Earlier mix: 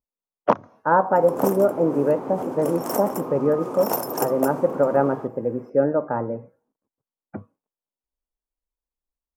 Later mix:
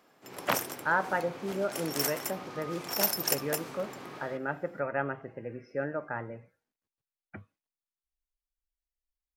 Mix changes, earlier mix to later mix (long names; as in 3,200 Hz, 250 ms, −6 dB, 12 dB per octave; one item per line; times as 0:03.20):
background: entry −0.90 s
master: add graphic EQ with 10 bands 125 Hz −7 dB, 250 Hz −12 dB, 500 Hz −11 dB, 1,000 Hz −11 dB, 2,000 Hz +7 dB, 4,000 Hz +11 dB